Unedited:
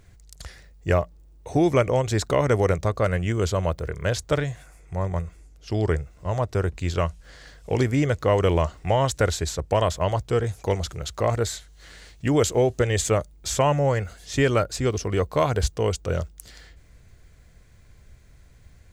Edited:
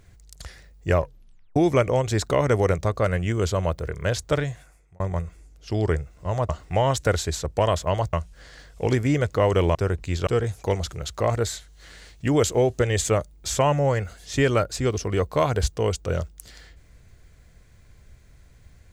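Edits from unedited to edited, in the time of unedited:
0.96 tape stop 0.60 s
4.47–5 fade out
6.49–7.01 swap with 8.63–10.27

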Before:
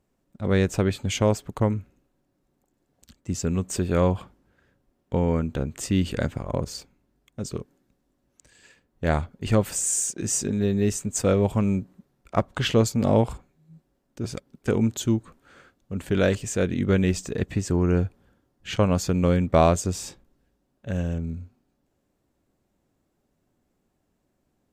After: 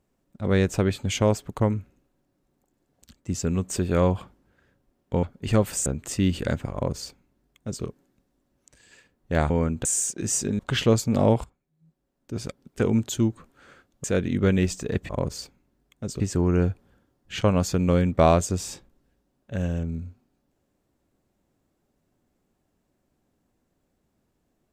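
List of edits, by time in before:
5.23–5.58 swap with 9.22–9.85
6.45–7.56 copy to 17.55
10.59–12.47 cut
13.32–14.31 fade in quadratic, from -16 dB
15.92–16.5 cut

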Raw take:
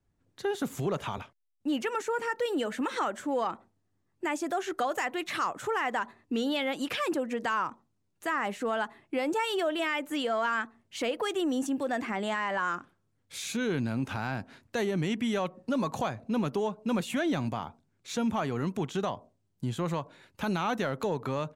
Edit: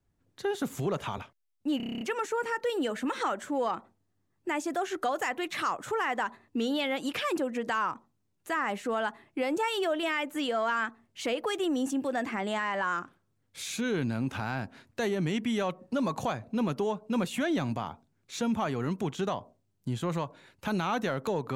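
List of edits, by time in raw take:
1.77 stutter 0.03 s, 9 plays

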